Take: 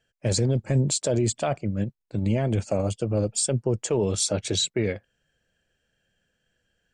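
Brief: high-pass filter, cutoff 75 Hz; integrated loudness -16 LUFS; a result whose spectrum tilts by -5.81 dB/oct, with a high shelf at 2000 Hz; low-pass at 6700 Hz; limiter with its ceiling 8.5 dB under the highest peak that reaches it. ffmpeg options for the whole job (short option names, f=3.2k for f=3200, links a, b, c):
-af "highpass=75,lowpass=6.7k,highshelf=f=2k:g=-8.5,volume=16dB,alimiter=limit=-5.5dB:level=0:latency=1"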